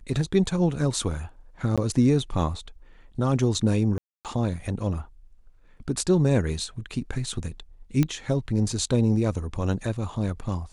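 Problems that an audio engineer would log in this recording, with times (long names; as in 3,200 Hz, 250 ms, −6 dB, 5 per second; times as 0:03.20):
0:01.76–0:01.78: drop-out 16 ms
0:03.98–0:04.25: drop-out 268 ms
0:08.03: click −11 dBFS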